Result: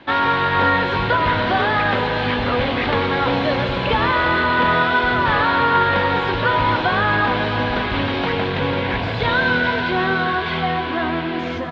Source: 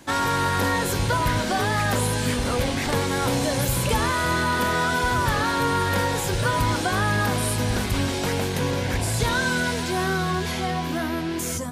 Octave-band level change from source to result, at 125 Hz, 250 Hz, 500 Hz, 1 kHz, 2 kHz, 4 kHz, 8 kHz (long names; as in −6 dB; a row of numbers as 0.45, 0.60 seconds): 0.0 dB, +3.0 dB, +5.0 dB, +7.0 dB, +7.0 dB, +3.5 dB, below −25 dB